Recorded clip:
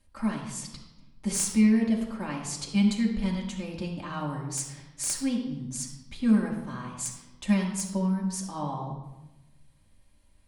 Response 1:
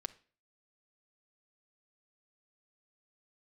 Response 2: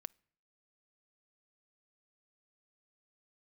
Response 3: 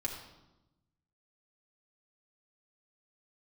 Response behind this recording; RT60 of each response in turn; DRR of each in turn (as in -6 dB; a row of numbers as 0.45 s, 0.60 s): 3; no single decay rate, no single decay rate, 1.0 s; 7.0 dB, 26.0 dB, -2.5 dB